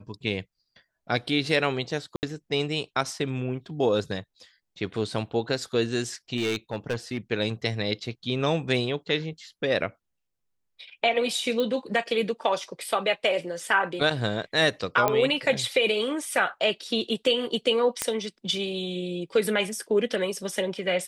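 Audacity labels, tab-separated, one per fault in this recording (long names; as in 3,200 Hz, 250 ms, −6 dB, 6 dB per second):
2.160000	2.230000	drop-out 69 ms
6.360000	7.180000	clipping −22.5 dBFS
11.600000	11.600000	click −16 dBFS
15.080000	15.080000	click −8 dBFS
18.020000	18.020000	click −8 dBFS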